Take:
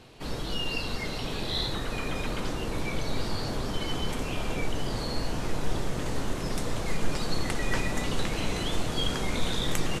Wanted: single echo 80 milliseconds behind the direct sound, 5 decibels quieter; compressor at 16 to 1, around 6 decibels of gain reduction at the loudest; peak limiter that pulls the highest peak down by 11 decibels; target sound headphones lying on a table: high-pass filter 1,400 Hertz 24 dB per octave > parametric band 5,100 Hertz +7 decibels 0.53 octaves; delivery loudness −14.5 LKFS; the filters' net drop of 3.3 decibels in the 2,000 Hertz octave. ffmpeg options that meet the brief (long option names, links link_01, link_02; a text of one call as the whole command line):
ffmpeg -i in.wav -af "equalizer=frequency=2000:width_type=o:gain=-4,acompressor=threshold=-24dB:ratio=16,alimiter=limit=-23.5dB:level=0:latency=1,highpass=frequency=1400:width=0.5412,highpass=frequency=1400:width=1.3066,equalizer=frequency=5100:width_type=o:width=0.53:gain=7,aecho=1:1:80:0.562,volume=22dB" out.wav